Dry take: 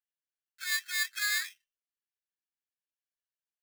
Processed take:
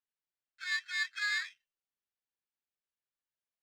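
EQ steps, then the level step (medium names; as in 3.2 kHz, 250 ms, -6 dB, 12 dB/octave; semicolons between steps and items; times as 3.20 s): distance through air 140 m; 0.0 dB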